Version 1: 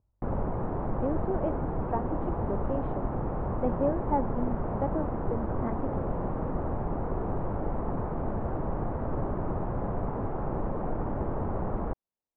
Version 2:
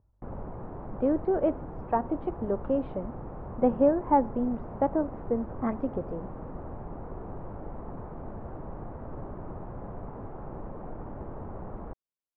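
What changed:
speech +6.0 dB; background -8.5 dB

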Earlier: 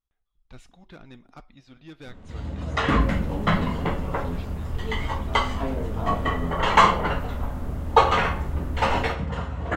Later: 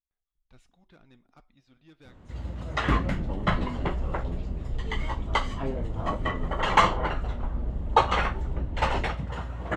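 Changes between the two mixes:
speech -11.0 dB; second sound: add running mean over 35 samples; reverb: off

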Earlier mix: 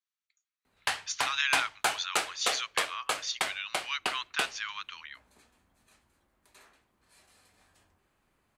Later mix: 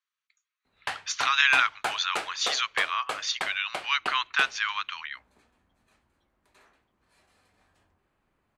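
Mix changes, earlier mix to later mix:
speech +10.5 dB; master: add high shelf 4300 Hz -11.5 dB

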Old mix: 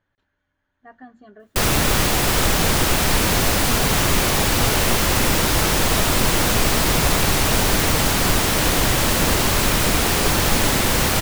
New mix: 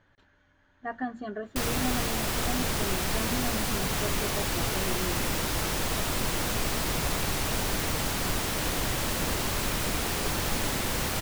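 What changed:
speech +10.0 dB; background -11.0 dB

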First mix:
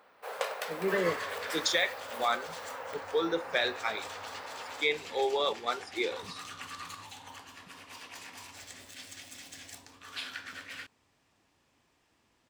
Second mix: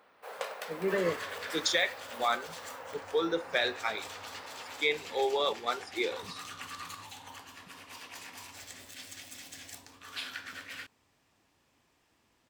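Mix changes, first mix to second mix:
first sound -4.0 dB; second sound: add bell 15000 Hz +7 dB 0.51 oct

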